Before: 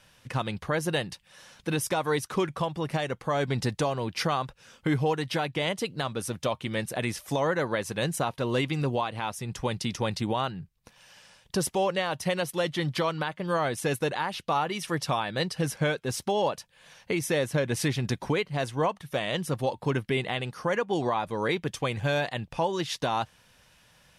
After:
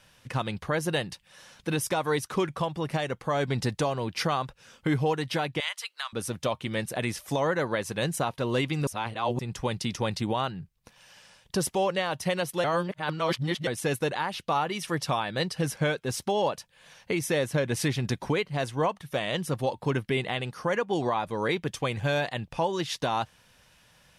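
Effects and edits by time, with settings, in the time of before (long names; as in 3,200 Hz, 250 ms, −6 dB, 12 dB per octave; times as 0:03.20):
0:05.60–0:06.13: high-pass filter 1,100 Hz 24 dB per octave
0:08.87–0:09.39: reverse
0:12.64–0:13.67: reverse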